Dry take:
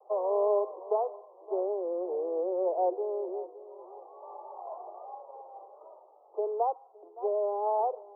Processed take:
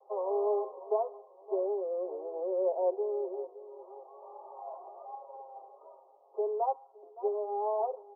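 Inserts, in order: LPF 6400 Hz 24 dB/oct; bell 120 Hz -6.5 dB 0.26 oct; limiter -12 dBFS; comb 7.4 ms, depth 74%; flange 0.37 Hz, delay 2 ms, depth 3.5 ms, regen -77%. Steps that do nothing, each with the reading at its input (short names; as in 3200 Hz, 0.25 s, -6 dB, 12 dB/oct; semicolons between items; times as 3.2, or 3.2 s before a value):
LPF 6400 Hz: input band ends at 1200 Hz; bell 120 Hz: input band starts at 300 Hz; limiter -12 dBFS: input peak -16.5 dBFS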